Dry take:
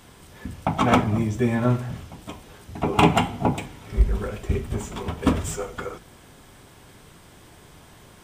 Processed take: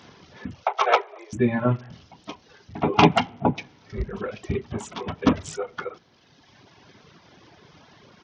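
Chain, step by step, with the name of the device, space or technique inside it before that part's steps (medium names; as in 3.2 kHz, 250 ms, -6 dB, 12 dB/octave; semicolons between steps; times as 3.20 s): 0.63–1.33 s: steep high-pass 380 Hz 96 dB/octave; reverb removal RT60 1.8 s; Bluetooth headset (high-pass 120 Hz 12 dB/octave; resampled via 16 kHz; trim +2 dB; SBC 64 kbps 48 kHz)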